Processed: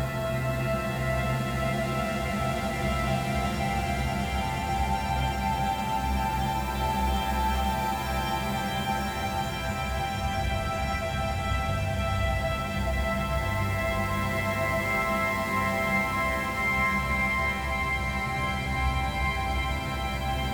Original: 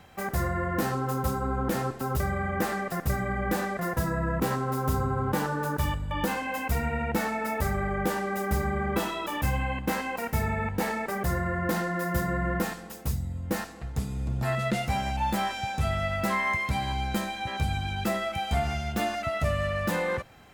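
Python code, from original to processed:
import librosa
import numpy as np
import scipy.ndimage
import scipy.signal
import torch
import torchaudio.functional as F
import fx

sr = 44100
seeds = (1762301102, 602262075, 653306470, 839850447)

y = np.clip(x, -10.0 ** (-19.0 / 20.0), 10.0 ** (-19.0 / 20.0))
y = fx.echo_diffused(y, sr, ms=918, feedback_pct=64, wet_db=-11)
y = fx.paulstretch(y, sr, seeds[0], factor=8.1, window_s=1.0, from_s=14.4)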